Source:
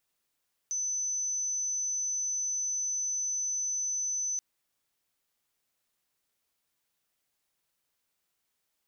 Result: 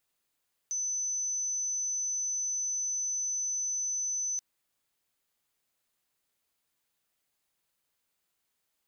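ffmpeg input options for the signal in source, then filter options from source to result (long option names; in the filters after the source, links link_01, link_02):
-f lavfi -i "sine=frequency=6050:duration=3.68:sample_rate=44100,volume=-10.94dB"
-af "bandreject=frequency=5600:width=18"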